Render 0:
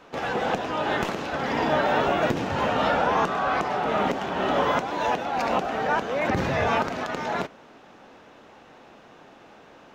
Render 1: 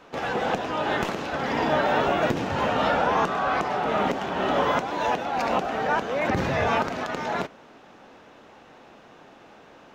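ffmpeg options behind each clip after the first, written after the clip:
ffmpeg -i in.wav -af anull out.wav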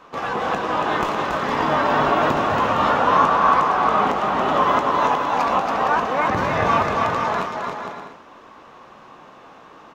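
ffmpeg -i in.wav -filter_complex "[0:a]equalizer=frequency=1100:width_type=o:width=0.35:gain=12,asplit=2[link_01][link_02];[link_02]adelay=19,volume=-11.5dB[link_03];[link_01][link_03]amix=inputs=2:normalize=0,asplit=2[link_04][link_05];[link_05]aecho=0:1:280|462|580.3|657.2|707.2:0.631|0.398|0.251|0.158|0.1[link_06];[link_04][link_06]amix=inputs=2:normalize=0" out.wav

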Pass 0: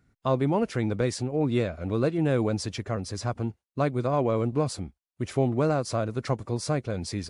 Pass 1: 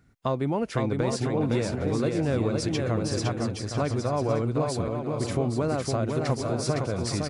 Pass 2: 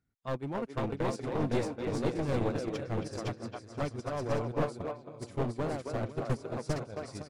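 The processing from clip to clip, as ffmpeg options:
ffmpeg -i in.wav -filter_complex "[0:a]acompressor=threshold=-30dB:ratio=2.5,asplit=2[link_01][link_02];[link_02]aecho=0:1:510|816|999.6|1110|1176:0.631|0.398|0.251|0.158|0.1[link_03];[link_01][link_03]amix=inputs=2:normalize=0,volume=4dB" out.wav
ffmpeg -i in.wav -filter_complex "[0:a]agate=range=-20dB:threshold=-24dB:ratio=16:detection=peak,asplit=2[link_01][link_02];[link_02]adelay=270,highpass=300,lowpass=3400,asoftclip=type=hard:threshold=-22dB,volume=-7dB[link_03];[link_01][link_03]amix=inputs=2:normalize=0,aeval=exprs='clip(val(0),-1,0.0251)':channel_layout=same" out.wav

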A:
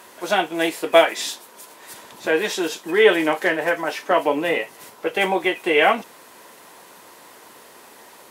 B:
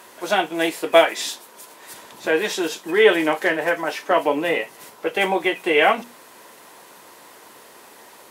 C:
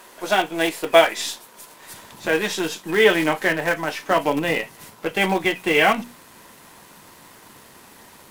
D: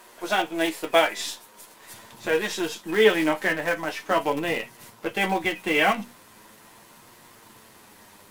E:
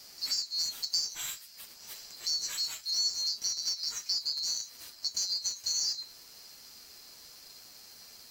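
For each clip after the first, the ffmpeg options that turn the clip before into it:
ffmpeg -i in.wav -af "bandreject=frequency=60:width_type=h:width=6,bandreject=frequency=120:width_type=h:width=6,bandreject=frequency=180:width_type=h:width=6,bandreject=frequency=240:width_type=h:width=6" out.wav
ffmpeg -i in.wav -filter_complex "[0:a]asubboost=boost=6:cutoff=180,asplit=2[link_01][link_02];[link_02]acrusher=bits=4:dc=4:mix=0:aa=0.000001,volume=-10dB[link_03];[link_01][link_03]amix=inputs=2:normalize=0,volume=-1.5dB" out.wav
ffmpeg -i in.wav -af "flanger=delay=8.3:depth=1.8:regen=47:speed=0.42:shape=triangular" out.wav
ffmpeg -i in.wav -filter_complex "[0:a]afftfilt=real='real(if(lt(b,736),b+184*(1-2*mod(floor(b/184),2)),b),0)':imag='imag(if(lt(b,736),b+184*(1-2*mod(floor(b/184),2)),b),0)':win_size=2048:overlap=0.75,acrossover=split=1300|2900[link_01][link_02][link_03];[link_01]acompressor=threshold=-59dB:ratio=4[link_04];[link_02]acompressor=threshold=-48dB:ratio=4[link_05];[link_03]acompressor=threshold=-30dB:ratio=4[link_06];[link_04][link_05][link_06]amix=inputs=3:normalize=0,volume=-1dB" out.wav

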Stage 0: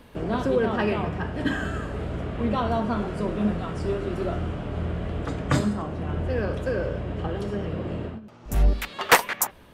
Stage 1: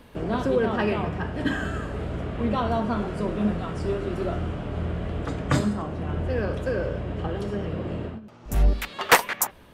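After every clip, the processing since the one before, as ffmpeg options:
ffmpeg -i in.wav -af anull out.wav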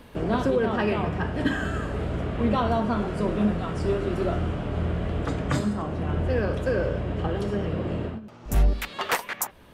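ffmpeg -i in.wav -af "alimiter=limit=-15dB:level=0:latency=1:release=415,volume=2dB" out.wav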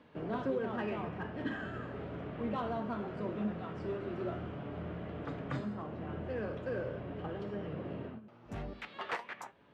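ffmpeg -i in.wav -filter_complex "[0:a]highpass=120,lowpass=3100,flanger=delay=6.5:depth=2.8:regen=78:speed=0.4:shape=sinusoidal,asplit=2[link_01][link_02];[link_02]asoftclip=type=hard:threshold=-31dB,volume=-11dB[link_03];[link_01][link_03]amix=inputs=2:normalize=0,volume=-8.5dB" out.wav

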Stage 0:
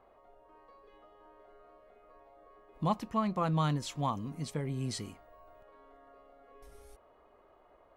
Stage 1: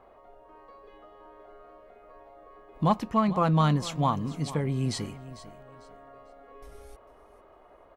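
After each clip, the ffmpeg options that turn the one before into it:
ffmpeg -i in.wav -filter_complex "[0:a]highshelf=frequency=4800:gain=-5,asplit=2[link_01][link_02];[link_02]aeval=exprs='clip(val(0),-1,0.0501)':channel_layout=same,volume=-7dB[link_03];[link_01][link_03]amix=inputs=2:normalize=0,aecho=1:1:448|896|1344:0.158|0.0428|0.0116,volume=4dB" out.wav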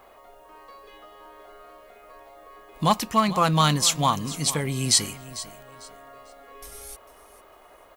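ffmpeg -i in.wav -af "crystalizer=i=9.5:c=0" out.wav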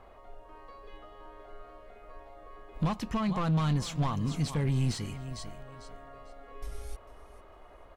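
ffmpeg -i in.wav -af "acompressor=threshold=-25dB:ratio=2.5,asoftclip=type=hard:threshold=-25.5dB,aemphasis=mode=reproduction:type=bsi,volume=-4dB" out.wav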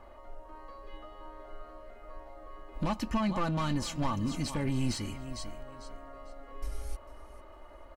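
ffmpeg -i in.wav -af "bandreject=frequency=3500:width=12,aecho=1:1:3.4:0.56" out.wav

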